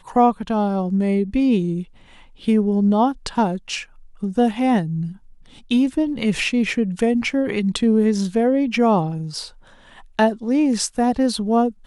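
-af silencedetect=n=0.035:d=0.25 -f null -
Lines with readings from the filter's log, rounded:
silence_start: 1.83
silence_end: 2.44 | silence_duration: 0.61
silence_start: 3.83
silence_end: 4.23 | silence_duration: 0.40
silence_start: 5.12
silence_end: 5.71 | silence_duration: 0.59
silence_start: 9.47
silence_end: 10.19 | silence_duration: 0.72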